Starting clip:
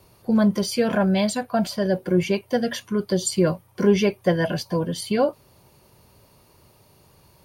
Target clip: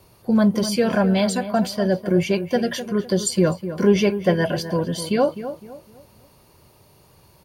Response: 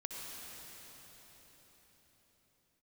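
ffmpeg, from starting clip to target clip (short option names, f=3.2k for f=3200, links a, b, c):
-filter_complex "[0:a]asplit=2[a][b];[b]adelay=254,lowpass=f=1.7k:p=1,volume=-11dB,asplit=2[c][d];[d]adelay=254,lowpass=f=1.7k:p=1,volume=0.35,asplit=2[e][f];[f]adelay=254,lowpass=f=1.7k:p=1,volume=0.35,asplit=2[g][h];[h]adelay=254,lowpass=f=1.7k:p=1,volume=0.35[i];[a][c][e][g][i]amix=inputs=5:normalize=0,volume=1.5dB"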